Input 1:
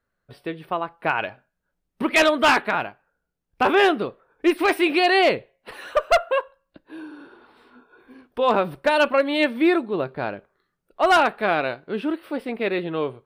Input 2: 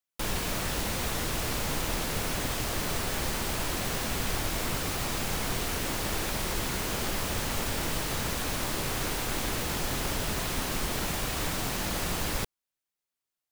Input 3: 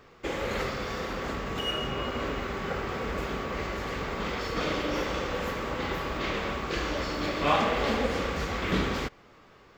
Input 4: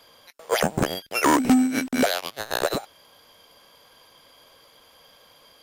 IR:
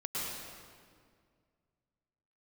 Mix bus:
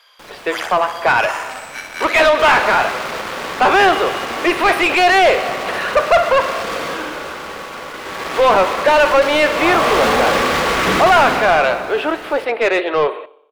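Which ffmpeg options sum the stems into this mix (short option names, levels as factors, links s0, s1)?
-filter_complex "[0:a]highpass=f=410:w=0.5412,highpass=f=410:w=1.3066,volume=1.33,asplit=4[s0][s1][s2][s3];[s1]volume=0.0841[s4];[s2]volume=0.0944[s5];[1:a]asoftclip=type=tanh:threshold=0.0316,volume=0.211[s6];[2:a]acrusher=bits=4:mix=0:aa=0.000001,adelay=2150,volume=2.51,afade=t=out:st=6.7:d=0.35:silence=0.398107,afade=t=in:st=8.01:d=0.28:silence=0.334965,afade=t=in:st=9.61:d=0.35:silence=0.421697,asplit=2[s7][s8];[s8]volume=0.668[s9];[3:a]highpass=1300,volume=0.473,asplit=2[s10][s11];[s11]volume=0.355[s12];[s3]apad=whole_len=248105[s13];[s10][s13]sidechaincompress=threshold=0.0398:ratio=8:attack=30:release=931[s14];[4:a]atrim=start_sample=2205[s15];[s4][s9]amix=inputs=2:normalize=0[s16];[s16][s15]afir=irnorm=-1:irlink=0[s17];[s5][s12]amix=inputs=2:normalize=0,aecho=0:1:61|122|183|244|305|366|427|488|549:1|0.58|0.336|0.195|0.113|0.0656|0.0381|0.0221|0.0128[s18];[s0][s6][s7][s14][s17][s18]amix=inputs=6:normalize=0,asplit=2[s19][s20];[s20]highpass=f=720:p=1,volume=12.6,asoftclip=type=tanh:threshold=0.668[s21];[s19][s21]amix=inputs=2:normalize=0,lowpass=f=1900:p=1,volume=0.501"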